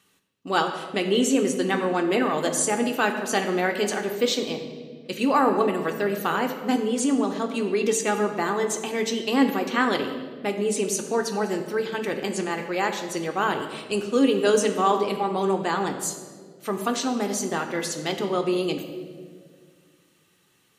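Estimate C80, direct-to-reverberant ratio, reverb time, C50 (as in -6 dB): 9.0 dB, 4.0 dB, 1.9 s, 8.0 dB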